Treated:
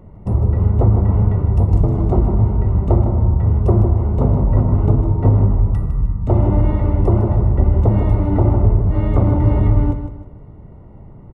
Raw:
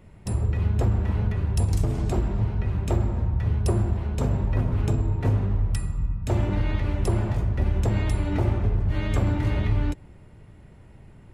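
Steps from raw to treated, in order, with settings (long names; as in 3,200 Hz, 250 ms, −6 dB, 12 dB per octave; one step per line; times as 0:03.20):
Savitzky-Golay smoothing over 65 samples
repeating echo 155 ms, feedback 33%, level −9 dB
level +9 dB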